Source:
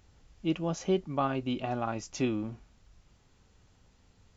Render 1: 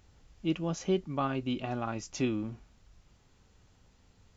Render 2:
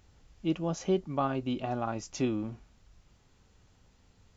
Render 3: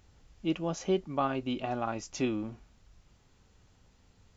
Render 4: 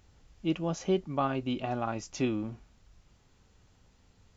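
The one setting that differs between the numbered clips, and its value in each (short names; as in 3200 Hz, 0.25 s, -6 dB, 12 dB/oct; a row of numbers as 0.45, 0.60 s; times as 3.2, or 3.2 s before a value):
dynamic EQ, frequency: 700, 2400, 130, 9000 Hz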